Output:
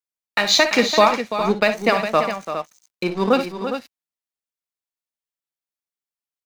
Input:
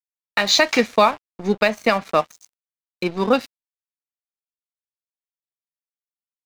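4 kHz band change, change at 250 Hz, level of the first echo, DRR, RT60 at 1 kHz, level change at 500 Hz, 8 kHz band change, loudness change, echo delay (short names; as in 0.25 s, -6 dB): +1.0 dB, +1.0 dB, -11.0 dB, none, none, +1.5 dB, +1.0 dB, +0.5 dB, 57 ms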